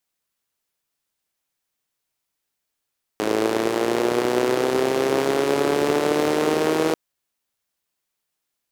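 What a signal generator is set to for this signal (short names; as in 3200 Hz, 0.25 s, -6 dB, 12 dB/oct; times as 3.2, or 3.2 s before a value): four-cylinder engine model, changing speed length 3.74 s, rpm 3200, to 4800, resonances 390 Hz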